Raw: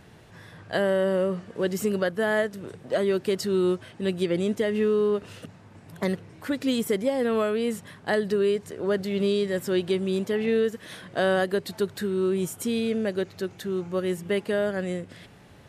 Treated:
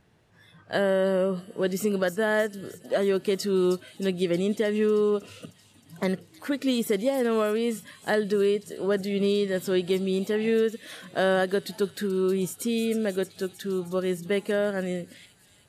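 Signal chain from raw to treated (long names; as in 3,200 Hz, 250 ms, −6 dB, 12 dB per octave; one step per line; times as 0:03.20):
noise reduction from a noise print of the clip's start 12 dB
on a send: delay with a high-pass on its return 313 ms, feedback 69%, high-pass 5,100 Hz, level −8 dB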